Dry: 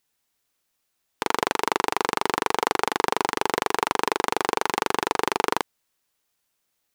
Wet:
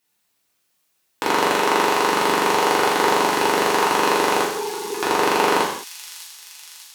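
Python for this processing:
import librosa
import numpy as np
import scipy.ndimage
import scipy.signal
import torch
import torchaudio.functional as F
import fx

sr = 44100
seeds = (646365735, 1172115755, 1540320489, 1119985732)

y = fx.hpss_only(x, sr, part='harmonic', at=(4.42, 4.99), fade=0.02)
y = scipy.signal.sosfilt(scipy.signal.butter(2, 52.0, 'highpass', fs=sr, output='sos'), y)
y = fx.echo_wet_highpass(y, sr, ms=597, feedback_pct=62, hz=5300.0, wet_db=-4.0)
y = fx.rev_gated(y, sr, seeds[0], gate_ms=240, shape='falling', drr_db=-6.0)
y = y * librosa.db_to_amplitude(-1.0)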